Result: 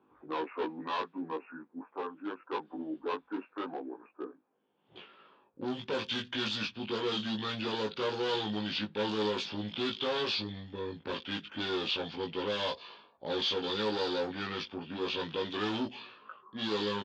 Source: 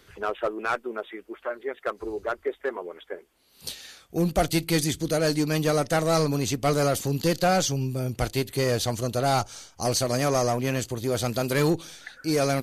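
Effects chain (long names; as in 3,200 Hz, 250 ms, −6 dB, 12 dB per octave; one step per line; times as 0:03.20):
low-pass that shuts in the quiet parts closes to 870 Hz, open at −18.5 dBFS
low-shelf EQ 420 Hz −7.5 dB
hard clipping −28.5 dBFS, distortion −8 dB
double-tracking delay 14 ms −2.5 dB
wrong playback speed 45 rpm record played at 33 rpm
loudspeaker in its box 240–4,100 Hz, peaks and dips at 330 Hz −5 dB, 630 Hz −8 dB, 1,200 Hz −3 dB, 2,000 Hz −9 dB, 3,500 Hz +3 dB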